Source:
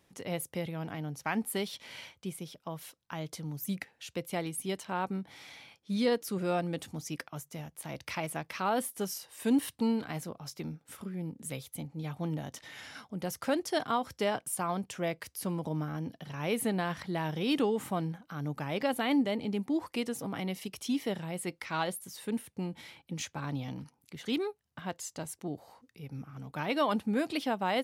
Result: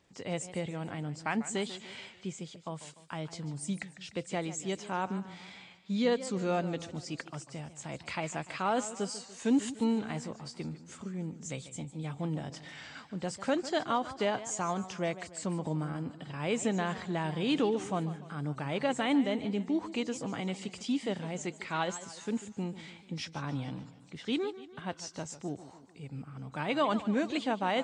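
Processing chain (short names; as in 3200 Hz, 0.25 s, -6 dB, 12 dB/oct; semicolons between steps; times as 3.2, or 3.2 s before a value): nonlinear frequency compression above 3700 Hz 1.5:1; warbling echo 0.147 s, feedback 51%, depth 147 cents, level -14.5 dB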